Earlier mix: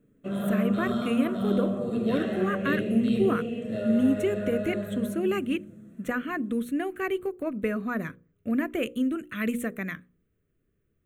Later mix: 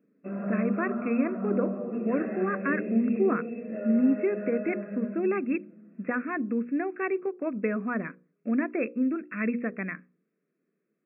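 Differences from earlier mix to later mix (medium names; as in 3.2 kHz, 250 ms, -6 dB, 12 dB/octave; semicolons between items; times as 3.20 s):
background -3.5 dB; master: add brick-wall FIR band-pass 160–2700 Hz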